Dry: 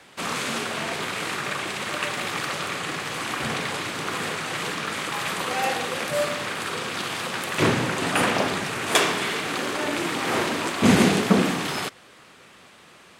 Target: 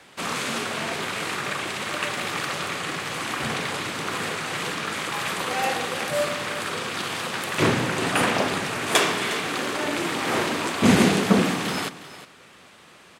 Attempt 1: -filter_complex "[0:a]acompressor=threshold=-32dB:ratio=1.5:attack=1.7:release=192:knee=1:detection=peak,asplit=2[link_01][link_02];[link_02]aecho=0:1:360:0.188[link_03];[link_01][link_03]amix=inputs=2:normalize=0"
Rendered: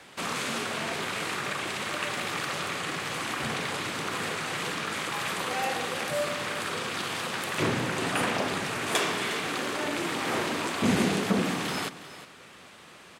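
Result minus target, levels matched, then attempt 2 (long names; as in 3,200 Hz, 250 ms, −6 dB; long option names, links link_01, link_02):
downward compressor: peak gain reduction +8.5 dB
-filter_complex "[0:a]asplit=2[link_01][link_02];[link_02]aecho=0:1:360:0.188[link_03];[link_01][link_03]amix=inputs=2:normalize=0"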